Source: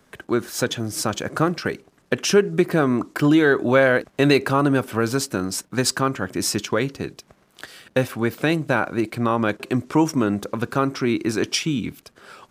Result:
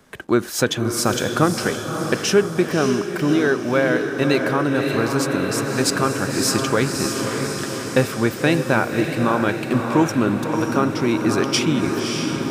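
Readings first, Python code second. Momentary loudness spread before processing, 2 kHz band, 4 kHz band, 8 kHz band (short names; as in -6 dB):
9 LU, +1.5 dB, +2.5 dB, +3.0 dB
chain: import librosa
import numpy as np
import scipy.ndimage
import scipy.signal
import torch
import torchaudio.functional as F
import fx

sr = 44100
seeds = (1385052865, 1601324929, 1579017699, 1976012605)

y = fx.echo_diffused(x, sr, ms=588, feedback_pct=62, wet_db=-5)
y = fx.rider(y, sr, range_db=4, speed_s=2.0)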